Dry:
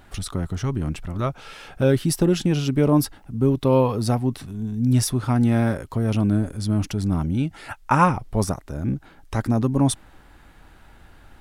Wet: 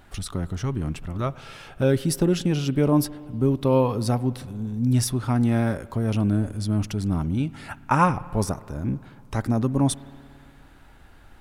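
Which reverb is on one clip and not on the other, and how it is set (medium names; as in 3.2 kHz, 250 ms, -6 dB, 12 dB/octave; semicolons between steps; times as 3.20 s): spring tank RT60 2.4 s, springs 57 ms, chirp 50 ms, DRR 18.5 dB; trim -2 dB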